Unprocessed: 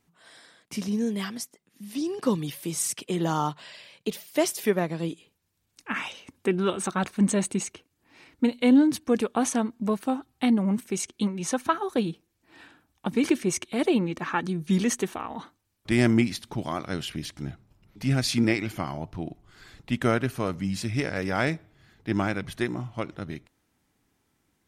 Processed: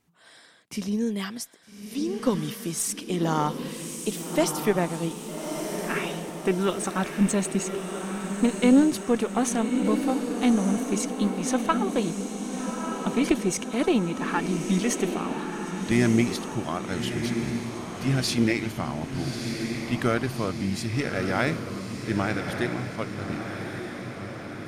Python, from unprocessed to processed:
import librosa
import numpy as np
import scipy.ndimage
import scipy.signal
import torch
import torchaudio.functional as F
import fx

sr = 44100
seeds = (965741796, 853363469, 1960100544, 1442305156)

y = fx.cheby_harmonics(x, sr, harmonics=(2,), levels_db=(-12,), full_scale_db=-7.5)
y = fx.echo_diffused(y, sr, ms=1230, feedback_pct=57, wet_db=-6.0)